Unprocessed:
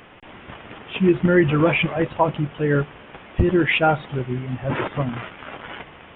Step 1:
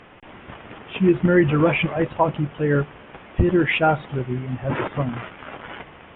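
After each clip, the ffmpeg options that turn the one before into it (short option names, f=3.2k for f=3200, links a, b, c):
-af "aemphasis=mode=reproduction:type=50kf"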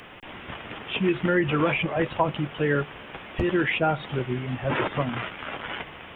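-filter_complex "[0:a]crystalizer=i=4:c=0,acrossover=split=290|1000[a][b][c];[a]acompressor=threshold=-29dB:ratio=4[d];[b]acompressor=threshold=-24dB:ratio=4[e];[c]acompressor=threshold=-27dB:ratio=4[f];[d][e][f]amix=inputs=3:normalize=0"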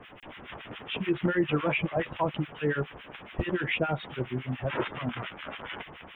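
-filter_complex "[0:a]acrossover=split=1300[a][b];[a]aeval=exprs='val(0)*(1-1/2+1/2*cos(2*PI*7.1*n/s))':c=same[c];[b]aeval=exprs='val(0)*(1-1/2-1/2*cos(2*PI*7.1*n/s))':c=same[d];[c][d]amix=inputs=2:normalize=0"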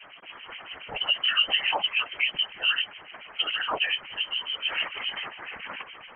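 -af "lowpass=f=2.7k:t=q:w=0.5098,lowpass=f=2.7k:t=q:w=0.6013,lowpass=f=2.7k:t=q:w=0.9,lowpass=f=2.7k:t=q:w=2.563,afreqshift=-3200,afftfilt=real='hypot(re,im)*cos(2*PI*random(0))':imag='hypot(re,im)*sin(2*PI*random(1))':win_size=512:overlap=0.75,volume=8dB"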